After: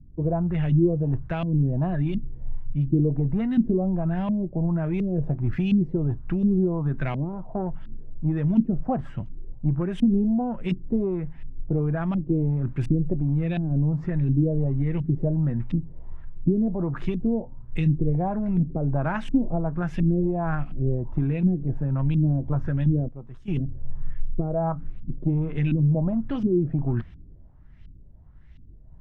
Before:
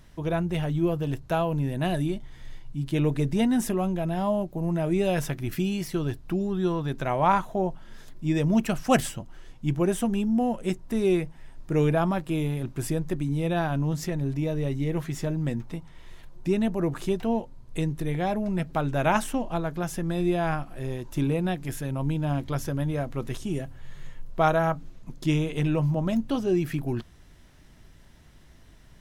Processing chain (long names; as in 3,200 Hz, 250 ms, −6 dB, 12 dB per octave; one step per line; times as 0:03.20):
0:23.08–0:23.48: first-order pre-emphasis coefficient 0.8
downward compressor 5 to 1, threshold −27 dBFS, peak gain reduction 11.5 dB
soft clipping −22 dBFS, distortion −22 dB
auto-filter low-pass saw up 1.4 Hz 230–2,900 Hz
bass and treble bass +11 dB, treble +3 dB
0:17.41–0:17.95: double-tracking delay 26 ms −13 dB
multiband upward and downward expander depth 40%